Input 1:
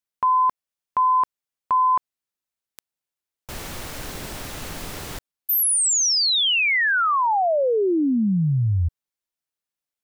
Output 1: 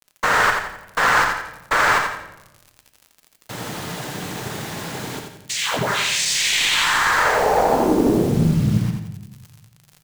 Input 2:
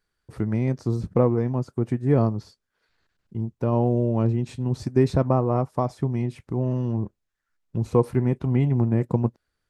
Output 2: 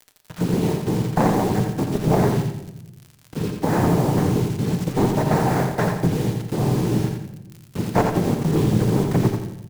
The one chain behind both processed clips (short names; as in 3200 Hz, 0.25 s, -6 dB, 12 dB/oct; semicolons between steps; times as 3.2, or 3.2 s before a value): high shelf 4400 Hz -10.5 dB; in parallel at +0.5 dB: compressor 5:1, threshold -29 dBFS; on the sum: sample-and-hold 5×; noise vocoder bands 6; one-sided clip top -17.5 dBFS; crackle 61/s -32 dBFS; bit-crush 6-bit; on a send: feedback echo 86 ms, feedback 38%, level -5 dB; on the sum: shoebox room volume 400 m³, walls mixed, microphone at 0.47 m